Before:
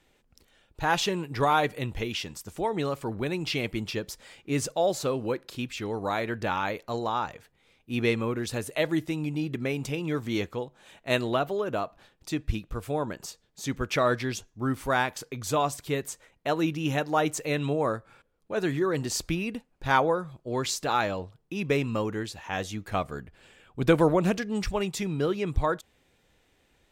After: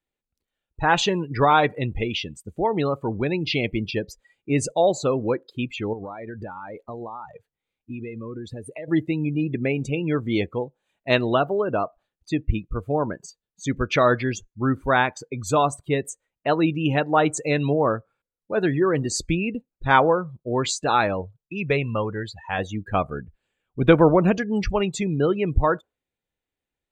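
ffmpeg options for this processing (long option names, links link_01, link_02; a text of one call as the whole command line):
ffmpeg -i in.wav -filter_complex "[0:a]asettb=1/sr,asplit=3[link_01][link_02][link_03];[link_01]atrim=end=5.934[link_04];[link_02]atrim=start=5.93:end=8.88,asetpts=PTS-STARTPTS,afade=type=in:duration=0.004:curve=qsin,afade=type=out:start_time=2.946:duration=0.004:curve=qsin,acompressor=threshold=-35dB:ratio=12:attack=3.2:release=140:knee=1:detection=peak[link_05];[link_03]atrim=start=8.876[link_06];[link_04][link_05]acrossfade=duration=0.004:curve1=hsin:curve2=qsin[link_07];[link_07][link_06]acrossfade=duration=0.004:curve1=qsin:curve2=hsin,asettb=1/sr,asplit=3[link_08][link_09][link_10];[link_08]atrim=end=21.214[link_11];[link_09]atrim=start=21.21:end=22.59,asetpts=PTS-STARTPTS,afade=type=in:duration=0.004:curve=qsin,afade=type=out:start_time=1.376:duration=0.004:curve=qsin,equalizer=frequency=280:width=1.5:gain=-8[link_12];[link_10]atrim=start=22.586[link_13];[link_11][link_12]acrossfade=duration=0.004:curve1=hsin:curve2=qsin[link_14];[link_14][link_13]acrossfade=duration=0.004:curve1=qsin:curve2=hsin,afftdn=noise_reduction=28:noise_floor=-37,bandreject=frequency=5400:width=5.6,volume=6dB" out.wav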